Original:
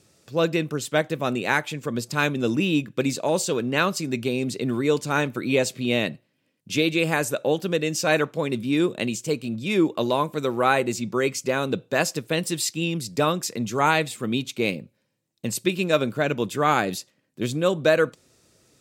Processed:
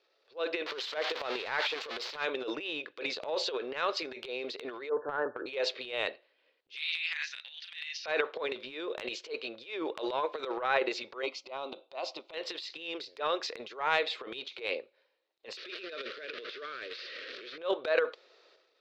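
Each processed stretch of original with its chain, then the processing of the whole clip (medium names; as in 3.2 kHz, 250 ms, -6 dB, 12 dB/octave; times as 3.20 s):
0.66–2.25 s: zero-crossing glitches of -13.5 dBFS + treble shelf 3.4 kHz -6.5 dB
4.89–5.46 s: brick-wall FIR low-pass 1.8 kHz + peaking EQ 100 Hz +10 dB 2.1 oct
6.75–8.06 s: elliptic band-pass 1.9–6.2 kHz, stop band 80 dB + doubling 33 ms -3 dB
11.22–12.34 s: low-pass 3.6 kHz 6 dB/octave + static phaser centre 450 Hz, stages 6
15.57–17.58 s: one-bit delta coder 32 kbps, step -26.5 dBFS + compression 2.5:1, threshold -27 dBFS + Butterworth band-stop 850 Hz, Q 1
whole clip: elliptic band-pass 440–4200 Hz, stop band 40 dB; transient shaper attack -12 dB, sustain +11 dB; trim -7 dB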